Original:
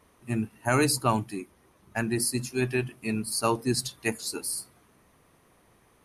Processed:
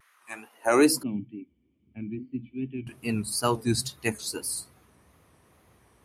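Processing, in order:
high-pass filter sweep 1,500 Hz → 68 Hz, 0:00.13–0:01.54
tape wow and flutter 100 cents
0:01.03–0:02.87: formant resonators in series i

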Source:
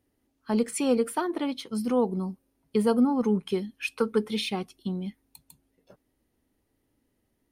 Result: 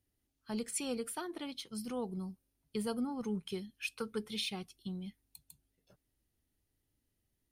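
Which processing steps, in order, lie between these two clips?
graphic EQ with 10 bands 250 Hz −9 dB, 500 Hz −8 dB, 1,000 Hz −8 dB, 2,000 Hz −4 dB
level −3.5 dB

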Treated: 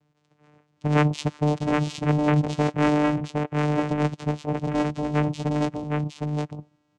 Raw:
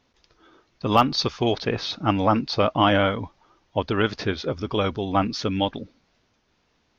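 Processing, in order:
channel vocoder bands 4, saw 149 Hz
single-tap delay 762 ms −3.5 dB

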